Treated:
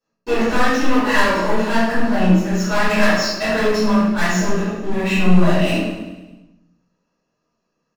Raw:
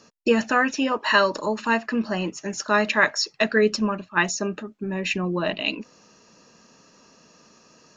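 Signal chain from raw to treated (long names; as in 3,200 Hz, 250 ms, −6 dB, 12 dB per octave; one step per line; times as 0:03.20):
high-shelf EQ 3,400 Hz −10.5 dB
hum removal 69.49 Hz, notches 19
leveller curve on the samples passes 5
multi-voice chorus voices 4, 1.2 Hz, delay 25 ms, depth 3.3 ms
repeating echo 104 ms, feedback 55%, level −12.5 dB
rectangular room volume 230 cubic metres, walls mixed, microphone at 5.3 metres
level −18 dB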